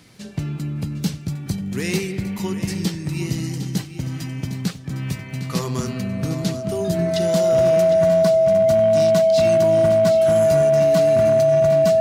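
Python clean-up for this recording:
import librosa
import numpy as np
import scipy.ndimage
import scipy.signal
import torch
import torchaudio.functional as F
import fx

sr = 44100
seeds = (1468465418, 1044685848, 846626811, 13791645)

y = fx.fix_declip(x, sr, threshold_db=-11.0)
y = fx.fix_declick_ar(y, sr, threshold=6.5)
y = fx.notch(y, sr, hz=650.0, q=30.0)
y = fx.fix_echo_inverse(y, sr, delay_ms=757, level_db=-11.5)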